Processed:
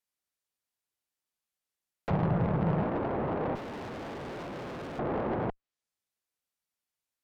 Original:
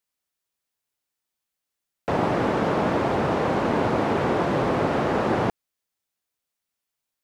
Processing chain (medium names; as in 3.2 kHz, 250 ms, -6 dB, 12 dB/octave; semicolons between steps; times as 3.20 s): low-pass that closes with the level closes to 970 Hz, closed at -21 dBFS; saturation -20 dBFS, distortion -15 dB; 2.10–2.83 s: resonant low shelf 210 Hz +7 dB, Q 3; 3.55–4.99 s: hard clipper -33 dBFS, distortion -8 dB; Chebyshev shaper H 6 -19 dB, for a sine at -12 dBFS; trim -5.5 dB